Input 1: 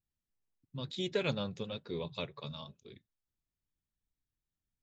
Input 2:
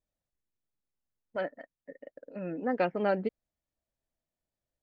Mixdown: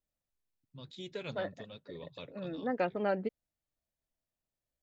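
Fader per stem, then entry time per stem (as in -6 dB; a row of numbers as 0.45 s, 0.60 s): -8.5 dB, -3.5 dB; 0.00 s, 0.00 s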